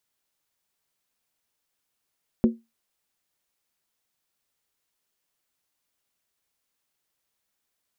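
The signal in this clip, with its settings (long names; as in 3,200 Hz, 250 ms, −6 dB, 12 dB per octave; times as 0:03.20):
struck skin, lowest mode 229 Hz, decay 0.22 s, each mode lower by 8 dB, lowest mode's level −11.5 dB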